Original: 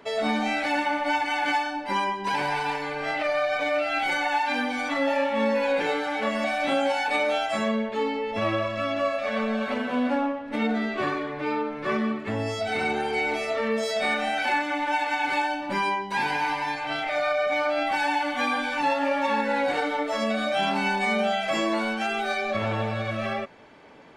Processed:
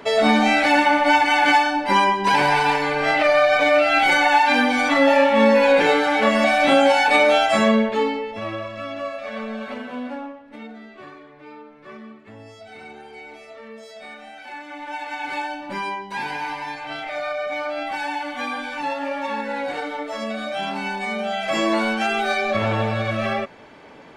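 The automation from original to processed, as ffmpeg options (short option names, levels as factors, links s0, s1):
-af "volume=26.6,afade=t=out:st=7.78:d=0.58:silence=0.237137,afade=t=out:st=9.71:d=1.02:silence=0.298538,afade=t=in:st=14.45:d=0.95:silence=0.251189,afade=t=in:st=21.24:d=0.47:silence=0.421697"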